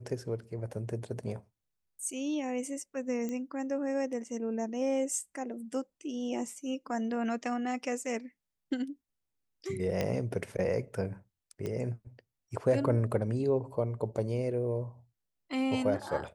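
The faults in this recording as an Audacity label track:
3.290000	3.290000	click −25 dBFS
10.010000	10.010000	click −19 dBFS
11.660000	11.660000	click −24 dBFS

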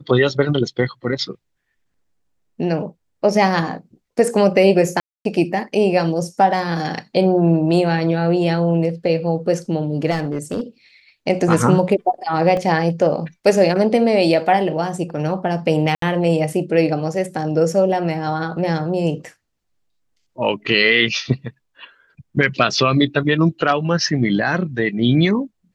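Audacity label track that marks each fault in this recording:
5.000000	5.250000	drop-out 252 ms
10.100000	10.610000	clipping −16 dBFS
12.570000	12.570000	drop-out 2.1 ms
15.950000	16.020000	drop-out 73 ms

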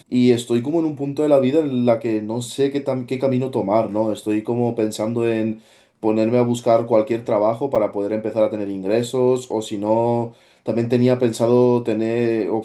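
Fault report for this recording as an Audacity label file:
7.750000	7.760000	drop-out 6.3 ms

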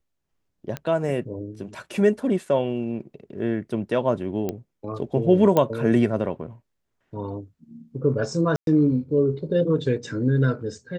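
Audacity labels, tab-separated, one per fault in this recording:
0.770000	0.770000	click −16 dBFS
4.490000	4.490000	click −14 dBFS
5.570000	5.570000	click −8 dBFS
8.560000	8.670000	drop-out 112 ms

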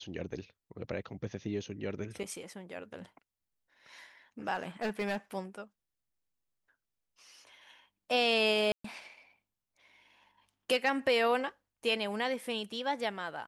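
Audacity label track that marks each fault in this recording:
4.540000	5.160000	clipping −28.5 dBFS
8.720000	8.840000	drop-out 124 ms

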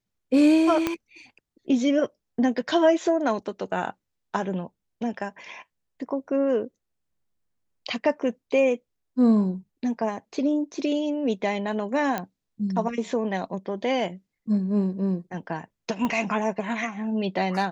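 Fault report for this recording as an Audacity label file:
0.870000	0.870000	click −10 dBFS
12.180000	12.180000	click −13 dBFS
16.050000	16.050000	click −14 dBFS

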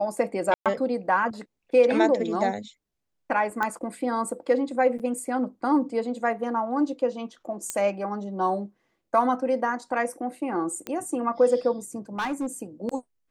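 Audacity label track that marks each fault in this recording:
0.540000	0.660000	drop-out 117 ms
3.630000	3.630000	click −14 dBFS
4.990000	5.000000	drop-out 7.5 ms
7.700000	7.700000	click −12 dBFS
10.870000	10.870000	click −16 dBFS
12.190000	12.470000	clipping −24 dBFS

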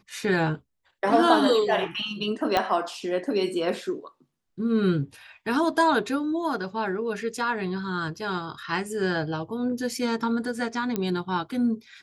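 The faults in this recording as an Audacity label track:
2.570000	2.570000	click −9 dBFS
10.960000	10.960000	click −13 dBFS

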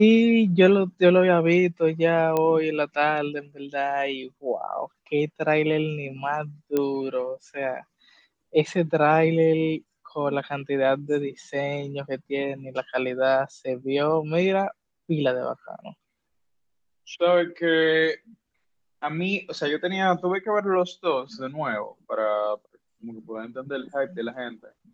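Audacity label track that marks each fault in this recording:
2.370000	2.370000	click −11 dBFS
6.770000	6.770000	click −12 dBFS

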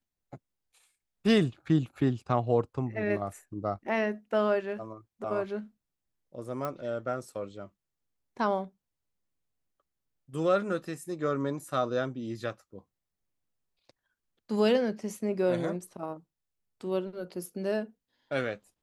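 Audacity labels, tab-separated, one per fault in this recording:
6.650000	6.650000	click −20 dBFS

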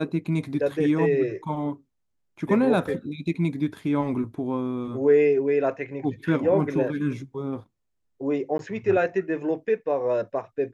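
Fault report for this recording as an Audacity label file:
8.580000	8.590000	drop-out 12 ms

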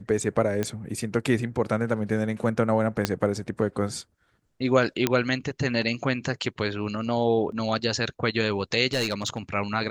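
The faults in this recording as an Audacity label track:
0.630000	0.630000	click −13 dBFS
3.050000	3.050000	click −7 dBFS
5.070000	5.070000	click −6 dBFS
7.520000	7.520000	drop-out 2.8 ms
8.930000	9.380000	clipping −20.5 dBFS

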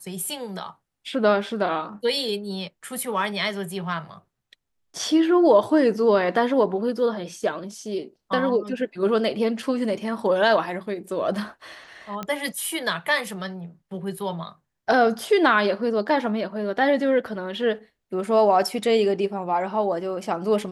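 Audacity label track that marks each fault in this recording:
12.230000	12.230000	click −16 dBFS

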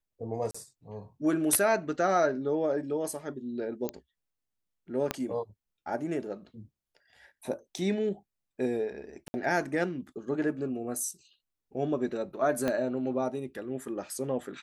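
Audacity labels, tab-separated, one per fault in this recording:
0.510000	0.550000	drop-out 35 ms
3.890000	3.890000	click −17 dBFS
5.110000	5.110000	click −13 dBFS
7.780000	7.780000	drop-out 2.4 ms
9.280000	9.340000	drop-out 60 ms
12.680000	12.680000	click −16 dBFS

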